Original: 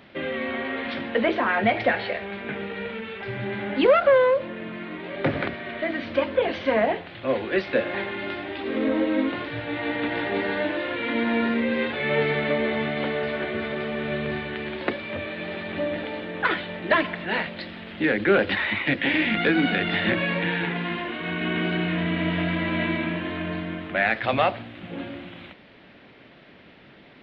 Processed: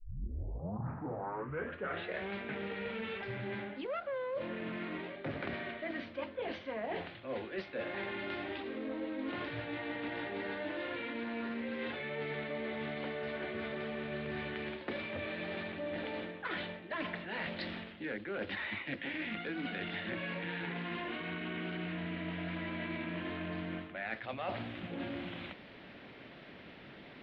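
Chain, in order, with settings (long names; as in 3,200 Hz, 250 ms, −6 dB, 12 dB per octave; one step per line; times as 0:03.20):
turntable start at the beginning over 2.31 s
reversed playback
downward compressor 12 to 1, threshold −34 dBFS, peak gain reduction 21.5 dB
reversed playback
highs frequency-modulated by the lows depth 0.17 ms
level −2 dB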